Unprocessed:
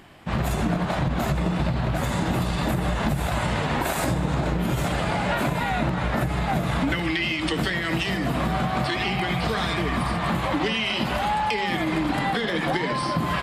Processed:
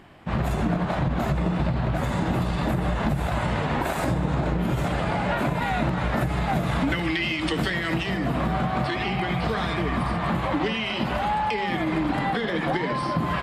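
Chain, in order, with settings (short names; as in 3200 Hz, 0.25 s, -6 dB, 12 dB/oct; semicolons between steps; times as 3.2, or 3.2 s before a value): high shelf 3500 Hz -9 dB, from 5.62 s -3 dB, from 7.94 s -9.5 dB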